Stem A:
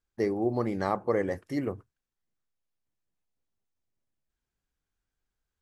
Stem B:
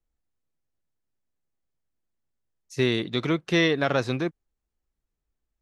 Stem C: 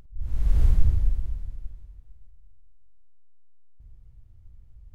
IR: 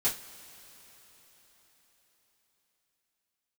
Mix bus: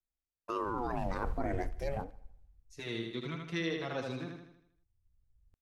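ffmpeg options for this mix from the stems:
-filter_complex "[0:a]bandreject=frequency=370:width=12,aeval=exprs='sgn(val(0))*max(abs(val(0))-0.0015,0)':channel_layout=same,aeval=exprs='val(0)*sin(2*PI*510*n/s+510*0.65/0.39*sin(2*PI*0.39*n/s))':channel_layout=same,adelay=300,volume=0.5dB,asplit=2[link_01][link_02];[link_02]volume=-22.5dB[link_03];[1:a]asplit=2[link_04][link_05];[link_05]adelay=5.8,afreqshift=1.3[link_06];[link_04][link_06]amix=inputs=2:normalize=1,volume=-12dB,asplit=3[link_07][link_08][link_09];[link_08]volume=-4dB[link_10];[2:a]adelay=600,volume=-17dB[link_11];[link_09]apad=whole_len=244320[link_12];[link_11][link_12]sidechaincompress=threshold=-52dB:ratio=8:attack=16:release=1170[link_13];[link_03][link_10]amix=inputs=2:normalize=0,aecho=0:1:79|158|237|316|395|474|553:1|0.48|0.23|0.111|0.0531|0.0255|0.0122[link_14];[link_01][link_07][link_13][link_14]amix=inputs=4:normalize=0,alimiter=limit=-24dB:level=0:latency=1:release=31"

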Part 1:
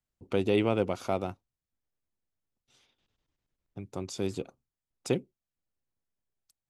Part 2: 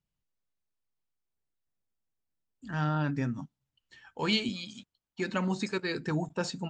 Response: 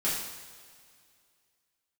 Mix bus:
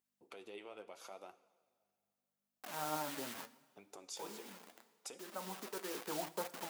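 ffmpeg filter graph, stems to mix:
-filter_complex "[0:a]acompressor=threshold=-36dB:ratio=2,alimiter=level_in=8dB:limit=-24dB:level=0:latency=1:release=364,volume=-8dB,aeval=exprs='val(0)+0.000355*(sin(2*PI*50*n/s)+sin(2*PI*2*50*n/s)/2+sin(2*PI*3*50*n/s)/3+sin(2*PI*4*50*n/s)/4+sin(2*PI*5*50*n/s)/5)':channel_layout=same,volume=1dB,asplit=3[link_01][link_02][link_03];[link_02]volume=-19.5dB[link_04];[1:a]lowpass=frequency=1100:width=0.5412,lowpass=frequency=1100:width=1.3066,acrusher=bits=6:mix=0:aa=0.000001,volume=1.5dB,asplit=2[link_05][link_06];[link_06]volume=-22dB[link_07];[link_03]apad=whole_len=295306[link_08];[link_05][link_08]sidechaincompress=threshold=-50dB:ratio=5:attack=39:release=913[link_09];[2:a]atrim=start_sample=2205[link_10];[link_04][link_07]amix=inputs=2:normalize=0[link_11];[link_11][link_10]afir=irnorm=-1:irlink=0[link_12];[link_01][link_09][link_12]amix=inputs=3:normalize=0,highpass=540,highshelf=frequency=9100:gain=8,flanger=delay=2.4:depth=8.9:regen=59:speed=0.76:shape=triangular"

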